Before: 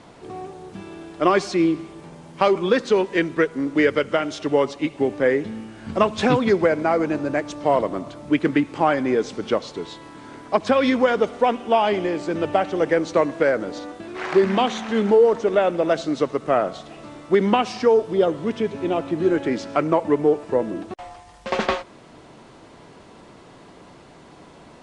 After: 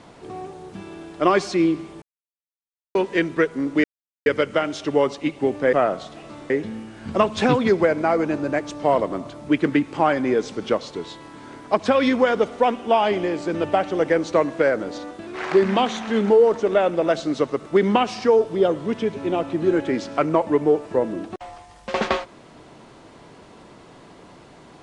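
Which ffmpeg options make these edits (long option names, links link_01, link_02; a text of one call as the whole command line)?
ffmpeg -i in.wav -filter_complex "[0:a]asplit=7[link_01][link_02][link_03][link_04][link_05][link_06][link_07];[link_01]atrim=end=2.02,asetpts=PTS-STARTPTS,afade=type=out:start_time=2.016:duration=0.004:curve=hsin[link_08];[link_02]atrim=start=2.02:end=2.95,asetpts=PTS-STARTPTS,volume=0[link_09];[link_03]atrim=start=2.95:end=3.84,asetpts=PTS-STARTPTS,afade=type=in:duration=0.004:curve=hsin,afade=type=out:start_time=0.886:duration=0.004:curve=hsin,apad=pad_dur=0.42[link_10];[link_04]atrim=start=3.84:end=5.312,asetpts=PTS-STARTPTS,afade=type=in:duration=0.004:curve=hsin[link_11];[link_05]atrim=start=16.468:end=17.242[link_12];[link_06]atrim=start=5.308:end=16.472[link_13];[link_07]atrim=start=17.238[link_14];[link_08][link_09][link_10][link_11]concat=n=4:v=0:a=1[link_15];[link_15][link_12]acrossfade=duration=0.004:curve1=hsin:curve2=hsin[link_16];[link_16][link_13]acrossfade=duration=0.004:curve1=hsin:curve2=hsin[link_17];[link_17][link_14]acrossfade=duration=0.004:curve1=hsin:curve2=hsin" out.wav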